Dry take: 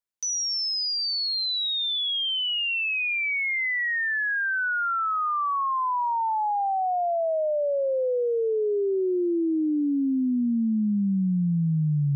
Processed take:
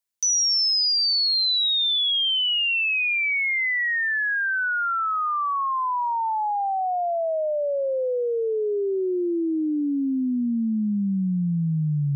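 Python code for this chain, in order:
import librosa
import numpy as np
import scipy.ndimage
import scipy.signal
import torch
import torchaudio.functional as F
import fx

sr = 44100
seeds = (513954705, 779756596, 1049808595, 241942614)

y = fx.high_shelf(x, sr, hz=2900.0, db=8.0)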